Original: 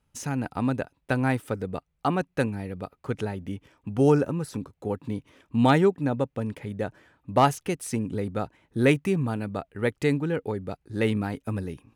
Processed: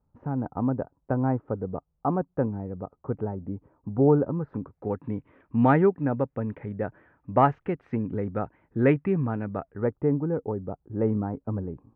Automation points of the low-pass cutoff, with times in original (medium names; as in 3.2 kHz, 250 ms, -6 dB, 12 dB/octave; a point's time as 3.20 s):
low-pass 24 dB/octave
4.18 s 1.1 kHz
4.87 s 1.9 kHz
9.55 s 1.9 kHz
9.98 s 1.1 kHz